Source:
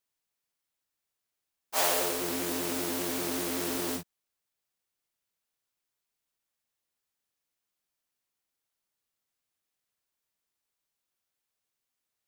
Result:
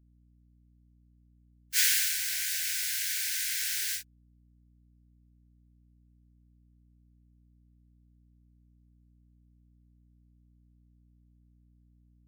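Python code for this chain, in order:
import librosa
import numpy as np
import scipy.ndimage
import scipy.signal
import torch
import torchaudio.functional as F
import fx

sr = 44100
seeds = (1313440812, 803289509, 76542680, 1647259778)

y = scipy.signal.sosfilt(scipy.signal.cheby1(6, 3, 1500.0, 'highpass', fs=sr, output='sos'), x)
y = fx.add_hum(y, sr, base_hz=60, snr_db=25)
y = fx.spec_gate(y, sr, threshold_db=-20, keep='strong')
y = F.gain(torch.from_numpy(y), 6.0).numpy()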